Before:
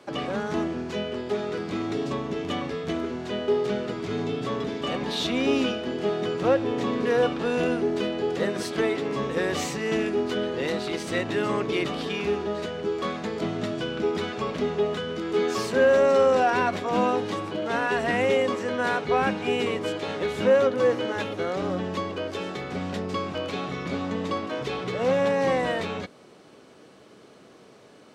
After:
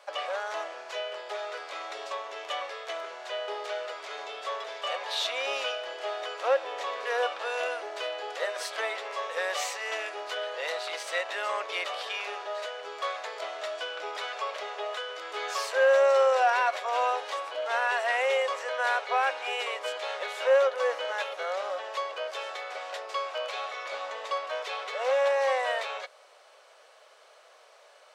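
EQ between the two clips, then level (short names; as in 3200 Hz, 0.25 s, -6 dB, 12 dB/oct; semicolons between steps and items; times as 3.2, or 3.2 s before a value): elliptic high-pass 560 Hz, stop band 70 dB; 0.0 dB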